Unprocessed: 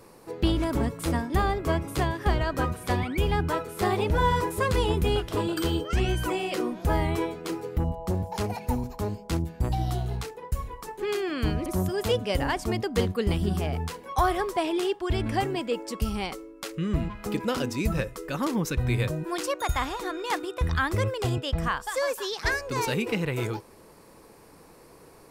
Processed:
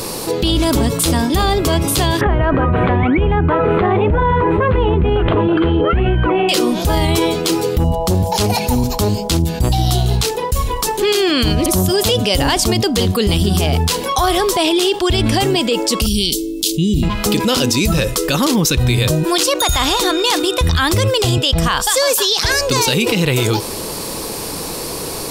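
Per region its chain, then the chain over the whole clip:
2.21–6.49 inverse Chebyshev low-pass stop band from 5200 Hz, stop band 50 dB + backwards sustainer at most 21 dB/s
16.06–17.03 Chebyshev band-stop 380–3200 Hz, order 3 + high shelf 11000 Hz +5 dB
whole clip: resonant high shelf 2600 Hz +8 dB, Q 1.5; maximiser +19.5 dB; fast leveller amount 50%; gain -7 dB

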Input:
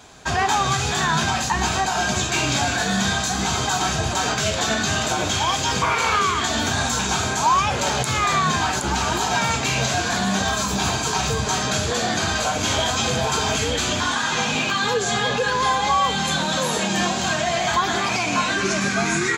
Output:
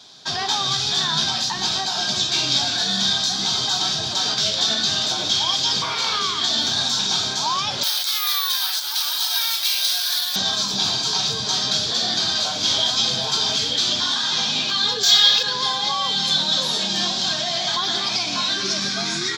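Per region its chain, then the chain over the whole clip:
7.83–10.36 HPF 1300 Hz + careless resampling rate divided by 3×, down filtered, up zero stuff
15.03–15.43 tilt shelf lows -9.5 dB, about 880 Hz + decimation joined by straight lines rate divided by 2×
whole clip: HPF 110 Hz 24 dB/oct; band shelf 4300 Hz +15.5 dB 1 oct; notch 480 Hz, Q 14; gain -7 dB

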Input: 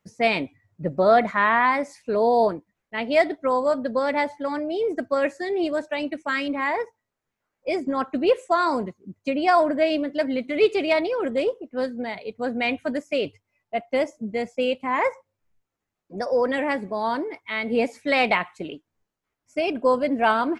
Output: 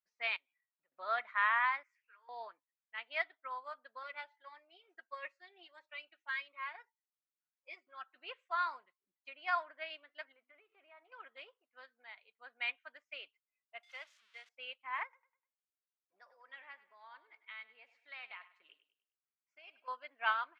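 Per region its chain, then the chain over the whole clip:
0.36–0.92 high shelf 4200 Hz +11 dB + compressor 8:1, threshold -40 dBFS
1.83–2.29 HPF 1000 Hz + fixed phaser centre 1700 Hz, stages 4 + comb 6.3 ms, depth 41%
4.03–8.16 comb 5.5 ms, depth 53% + cascading phaser rising 1.6 Hz
10.32–11.12 LPF 1300 Hz + notches 50/100/150/200/250/300/350 Hz + compressor 16:1, threshold -25 dBFS
13.83–14.49 switching spikes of -22 dBFS + HPF 750 Hz 6 dB/oct
15.03–19.88 compressor 4:1, threshold -28 dBFS + feedback echo 0.1 s, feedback 37%, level -12 dB
whole clip: Chebyshev band-pass 1200–3300 Hz, order 2; upward expander 1.5:1, over -46 dBFS; gain -7.5 dB

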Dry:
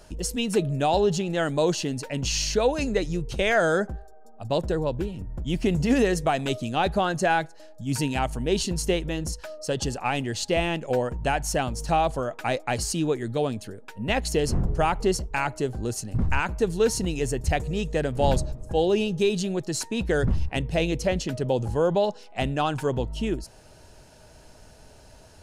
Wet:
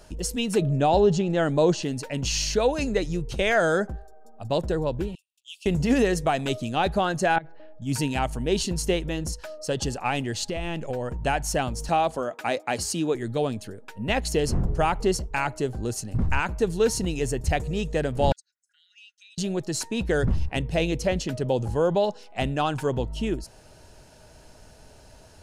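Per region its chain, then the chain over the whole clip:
0.61–1.83 LPF 8600 Hz 24 dB/oct + tilt shelf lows +3.5 dB, about 1300 Hz
5.15–5.66 rippled Chebyshev high-pass 2600 Hz, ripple 3 dB + high shelf 5200 Hz -3.5 dB
7.36–7.82 LPF 3000 Hz 24 dB/oct + low shelf 450 Hz +5.5 dB + level quantiser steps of 21 dB
10.46–11.1 low shelf 92 Hz +10 dB + compressor 12:1, threshold -25 dBFS
11.89–13.15 HPF 77 Hz 24 dB/oct + bell 130 Hz -12 dB 0.33 oct
18.32–19.38 formant sharpening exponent 1.5 + compressor 5:1, threshold -28 dBFS + rippled Chebyshev high-pass 1400 Hz, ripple 6 dB
whole clip: dry

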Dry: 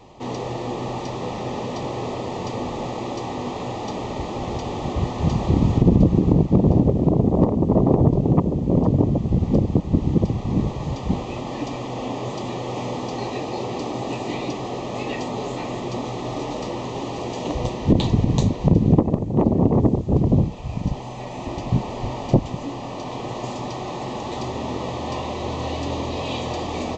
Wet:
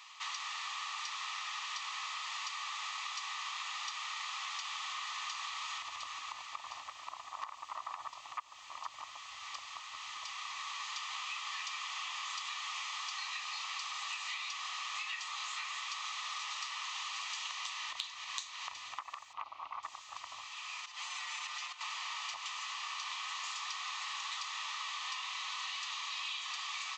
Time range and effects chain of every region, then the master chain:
19.33–19.83 air absorption 220 m + notch 1800 Hz, Q 5.6
20.84–21.81 comb 6.7 ms, depth 76% + compressor 12:1, threshold -27 dBFS + HPF 150 Hz 24 dB/oct
whole clip: elliptic high-pass 1200 Hz, stop band 60 dB; compressor 10:1, threshold -42 dBFS; gain +5 dB

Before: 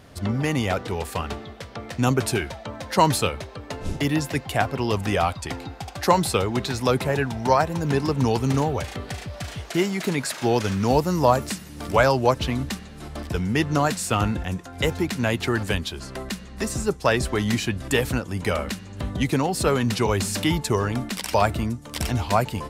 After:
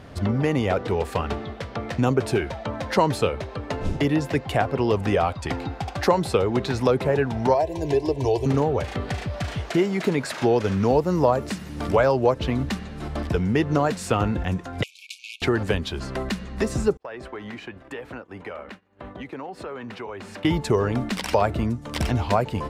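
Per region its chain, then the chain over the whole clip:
7.54–8.46 fixed phaser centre 550 Hz, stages 4 + comb 3 ms, depth 49%
14.83–15.42 tube stage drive 24 dB, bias 0.75 + brick-wall FIR band-pass 2200–13000 Hz
16.97–20.45 expander -26 dBFS + three-band isolator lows -15 dB, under 300 Hz, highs -14 dB, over 2900 Hz + compressor 4:1, threshold -39 dBFS
whole clip: LPF 2600 Hz 6 dB/oct; dynamic EQ 460 Hz, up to +6 dB, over -33 dBFS, Q 1.5; compressor 2:1, threshold -28 dBFS; gain +5.5 dB

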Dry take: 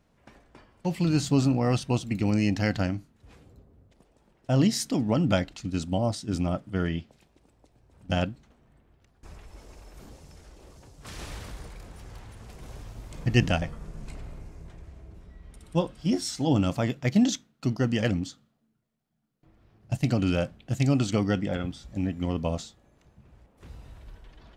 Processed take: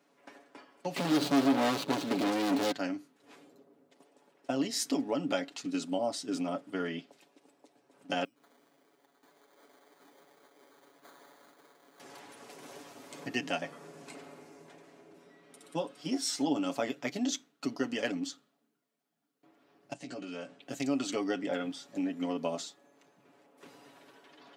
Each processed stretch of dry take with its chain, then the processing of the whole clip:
0.96–2.72 median filter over 25 samples + bell 3700 Hz +9.5 dB 0.84 oct + sample leveller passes 5
8.24–12 compressor 4:1, threshold -55 dBFS + tone controls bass -5 dB, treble +5 dB + sample-rate reducer 2700 Hz
19.93–20.61 steep low-pass 9100 Hz + compressor 8:1, threshold -36 dBFS + doubler 16 ms -5 dB
whole clip: compressor 3:1, threshold -28 dBFS; HPF 250 Hz 24 dB/oct; comb 7.1 ms, depth 64%

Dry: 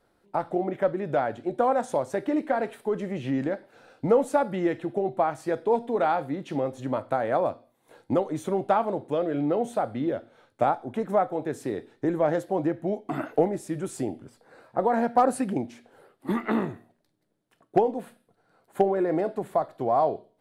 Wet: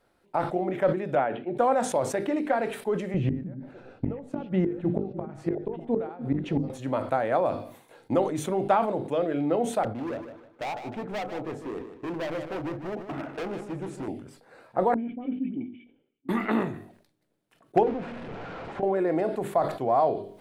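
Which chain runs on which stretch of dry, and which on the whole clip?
1.15–1.57 elliptic band-pass 140–3000 Hz + three-band expander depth 40%
3.14–6.7 RIAA curve playback + flipped gate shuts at -14 dBFS, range -26 dB + delay with a stepping band-pass 0.3 s, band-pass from 210 Hz, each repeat 1.4 oct, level -8.5 dB
9.83–14.08 LPF 1100 Hz 6 dB/oct + overloaded stage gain 30 dB + feedback echo 0.153 s, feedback 33%, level -10 dB
14.94–16.29 G.711 law mismatch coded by A + vocal tract filter i + dispersion highs, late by 63 ms, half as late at 1700 Hz
17.83–18.83 zero-crossing step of -29 dBFS + compressor, threshold -26 dBFS + tape spacing loss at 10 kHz 38 dB
whole clip: bell 2500 Hz +3.5 dB 0.58 oct; notches 50/100/150/200/250/300/350/400/450 Hz; sustainer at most 95 dB/s

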